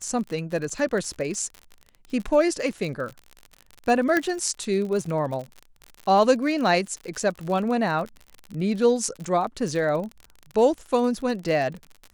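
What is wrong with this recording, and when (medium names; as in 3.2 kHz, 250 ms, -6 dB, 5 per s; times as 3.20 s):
crackle 56 per s -31 dBFS
4.17 s: pop -10 dBFS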